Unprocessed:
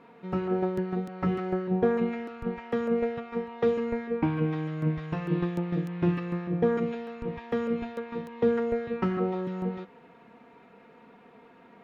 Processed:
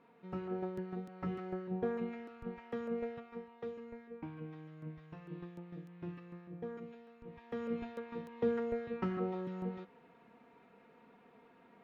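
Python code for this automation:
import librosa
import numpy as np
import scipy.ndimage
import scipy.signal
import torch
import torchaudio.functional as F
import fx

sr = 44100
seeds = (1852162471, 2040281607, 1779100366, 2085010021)

y = fx.gain(x, sr, db=fx.line((3.15, -11.5), (3.71, -19.0), (7.2, -19.0), (7.73, -8.5)))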